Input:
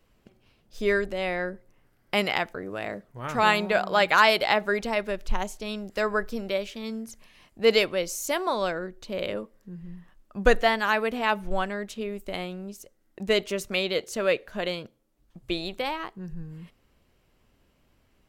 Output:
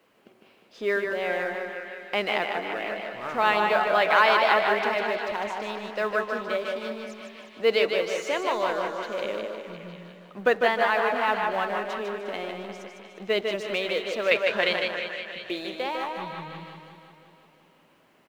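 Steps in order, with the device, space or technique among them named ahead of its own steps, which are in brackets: phone line with mismatched companding (band-pass 300–3400 Hz; companding laws mixed up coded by mu); 14.31–14.73 s: graphic EQ 125/1000/2000/4000/8000 Hz +10/+5/+9/+9/+3 dB; repeats whose band climbs or falls 174 ms, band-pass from 800 Hz, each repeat 0.7 oct, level -4.5 dB; feedback delay 355 ms, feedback 46%, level -12.5 dB; modulated delay 152 ms, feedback 35%, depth 54 cents, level -5 dB; trim -1.5 dB

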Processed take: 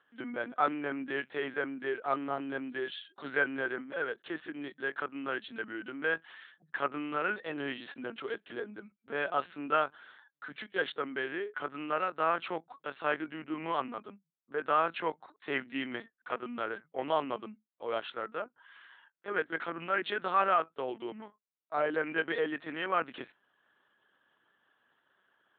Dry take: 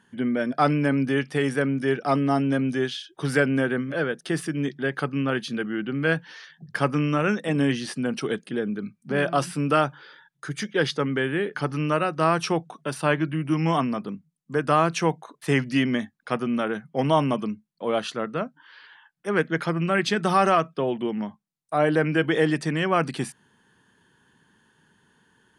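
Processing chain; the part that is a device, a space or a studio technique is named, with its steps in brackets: talking toy (LPC vocoder at 8 kHz pitch kept; high-pass 360 Hz 12 dB/octave; peaking EQ 1.4 kHz +4.5 dB 0.6 oct); trim -8.5 dB

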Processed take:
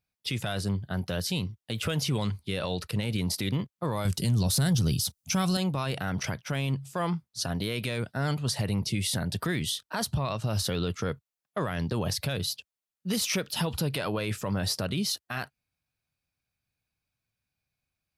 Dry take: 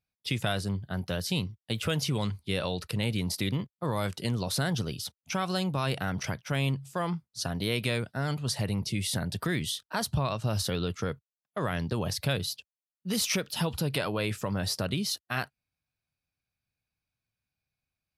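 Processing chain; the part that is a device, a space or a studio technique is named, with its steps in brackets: 4.05–5.57 s: tone controls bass +12 dB, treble +12 dB; soft clipper into limiter (saturation -12.5 dBFS, distortion -24 dB; peak limiter -21.5 dBFS, peak gain reduction 7.5 dB); trim +2.5 dB

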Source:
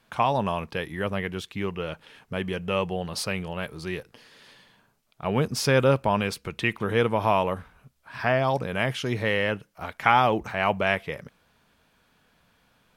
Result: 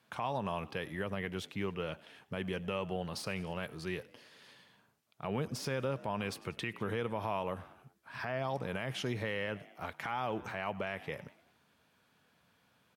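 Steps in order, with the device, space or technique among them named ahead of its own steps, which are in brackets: frequency-shifting echo 97 ms, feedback 56%, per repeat +61 Hz, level -23.5 dB; podcast mastering chain (high-pass 78 Hz 24 dB/octave; de-esser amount 65%; compression 4:1, threshold -24 dBFS, peak gain reduction 8.5 dB; peak limiter -18 dBFS, peak gain reduction 10 dB; trim -5.5 dB; MP3 128 kbps 48 kHz)

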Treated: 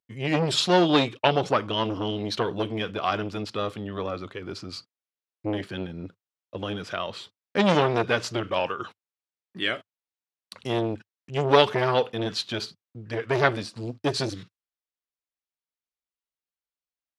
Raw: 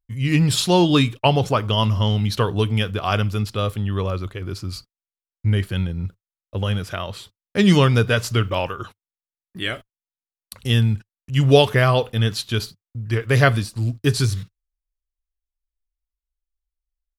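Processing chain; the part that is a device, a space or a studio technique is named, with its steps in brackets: public-address speaker with an overloaded transformer (transformer saturation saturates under 1 kHz; band-pass 220–5300 Hz)

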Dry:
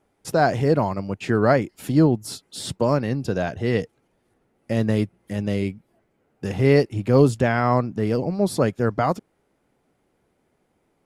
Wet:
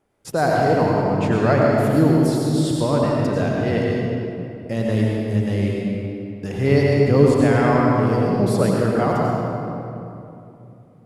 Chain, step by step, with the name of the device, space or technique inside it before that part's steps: stairwell (reverberation RT60 2.9 s, pre-delay 83 ms, DRR -3 dB); trim -2 dB

